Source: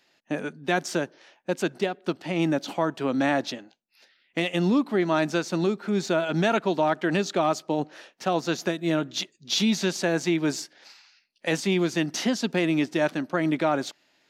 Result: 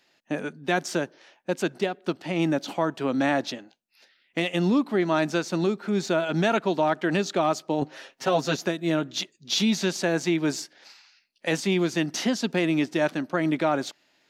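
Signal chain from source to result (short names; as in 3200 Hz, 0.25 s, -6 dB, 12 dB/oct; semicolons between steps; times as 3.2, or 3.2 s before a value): 7.81–8.56 comb 7.5 ms, depth 97%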